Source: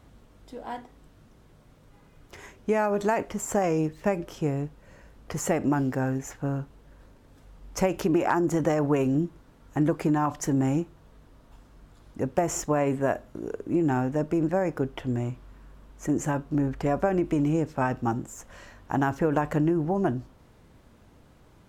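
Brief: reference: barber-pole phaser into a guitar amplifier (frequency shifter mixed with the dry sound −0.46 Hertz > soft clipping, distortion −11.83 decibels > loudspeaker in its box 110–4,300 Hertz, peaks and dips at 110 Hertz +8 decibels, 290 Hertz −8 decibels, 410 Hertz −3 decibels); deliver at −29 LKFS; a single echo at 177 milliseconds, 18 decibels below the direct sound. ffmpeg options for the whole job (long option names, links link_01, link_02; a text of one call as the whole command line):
ffmpeg -i in.wav -filter_complex "[0:a]aecho=1:1:177:0.126,asplit=2[link_01][link_02];[link_02]afreqshift=-0.46[link_03];[link_01][link_03]amix=inputs=2:normalize=1,asoftclip=threshold=-25.5dB,highpass=110,equalizer=frequency=110:width_type=q:width=4:gain=8,equalizer=frequency=290:width_type=q:width=4:gain=-8,equalizer=frequency=410:width_type=q:width=4:gain=-3,lowpass=frequency=4300:width=0.5412,lowpass=frequency=4300:width=1.3066,volume=6.5dB" out.wav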